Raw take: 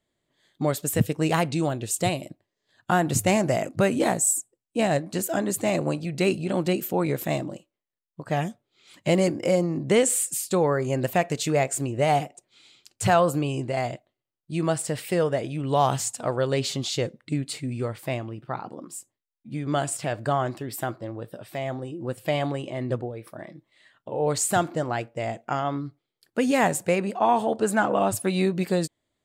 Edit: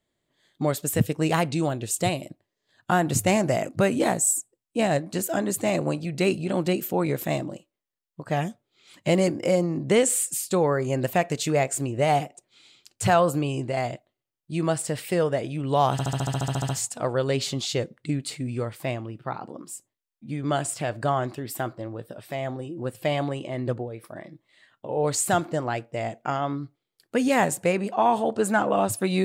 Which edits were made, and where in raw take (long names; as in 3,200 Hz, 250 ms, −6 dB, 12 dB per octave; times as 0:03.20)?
0:15.92: stutter 0.07 s, 12 plays